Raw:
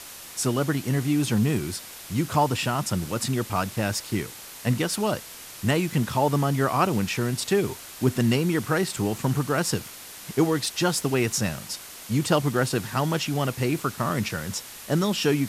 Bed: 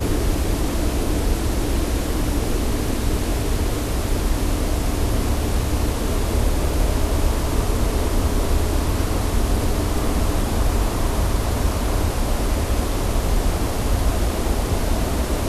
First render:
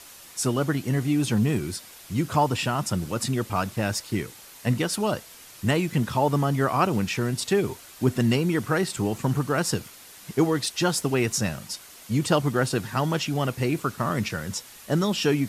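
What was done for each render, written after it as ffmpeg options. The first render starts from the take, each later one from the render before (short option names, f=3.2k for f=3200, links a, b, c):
-af "afftdn=nr=6:nf=-42"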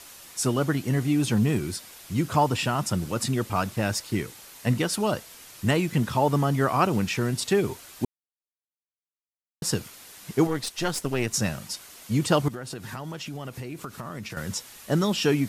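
-filter_complex "[0:a]asettb=1/sr,asplit=3[a][b][c];[a]atrim=end=10.474[d];[b]atrim=start=10.47:end=11.34,asetpts=PTS-STARTPTS,afade=t=in:d=0.004:c=qsin,afade=t=out:st=0.866:d=0.004:c=qsin,aeval=exprs='(tanh(6.31*val(0)+0.75)-tanh(0.75))/6.31':c=same[e];[c]atrim=start=11.336[f];[d][e]acrossfade=d=0.004:c1=hsin:c2=qsin[g];[g][f]acrossfade=d=0.004:c1=qsin:c2=hsin,asettb=1/sr,asplit=3[h][i][j];[h]atrim=end=12.484[k];[i]atrim=start=12.48:end=14.37,asetpts=PTS-STARTPTS,afade=t=in:d=0.004:c=qsin,afade=t=out:st=1.886:d=0.004:c=qsin,acompressor=threshold=-32dB:ratio=8:attack=3.2:release=140:knee=1:detection=peak[l];[j]atrim=start=14.366[m];[k][l]acrossfade=d=0.004:c1=hsin:c2=qsin[n];[n][m]acrossfade=d=0.004:c1=qsin:c2=hsin,asplit=3[o][p][q];[o]atrim=end=8.05,asetpts=PTS-STARTPTS,afade=t=out:st=8.046:d=0.004:c=hsin[r];[p]atrim=start=8.05:end=9.62,asetpts=PTS-STARTPTS,volume=0[s];[q]atrim=start=9.62,asetpts=PTS-STARTPTS,afade=t=in:d=0.004:c=hsin[t];[r][s][t]concat=n=3:v=0:a=1"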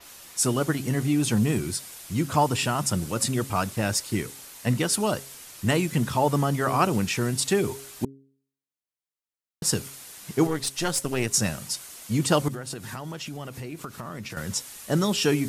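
-af "bandreject=f=135.9:t=h:w=4,bandreject=f=271.8:t=h:w=4,bandreject=f=407.7:t=h:w=4,bandreject=f=543.6:t=h:w=4,adynamicequalizer=threshold=0.00501:dfrequency=9200:dqfactor=0.85:tfrequency=9200:tqfactor=0.85:attack=5:release=100:ratio=0.375:range=3.5:mode=boostabove:tftype=bell"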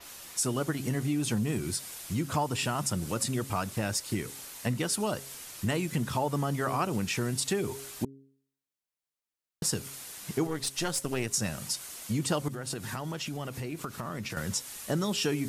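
-af "acompressor=threshold=-29dB:ratio=2.5"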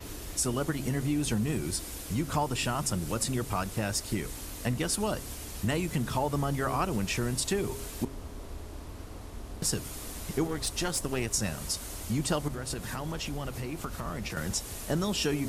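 -filter_complex "[1:a]volume=-22dB[a];[0:a][a]amix=inputs=2:normalize=0"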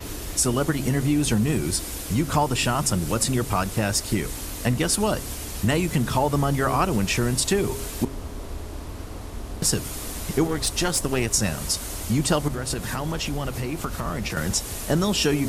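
-af "volume=7.5dB"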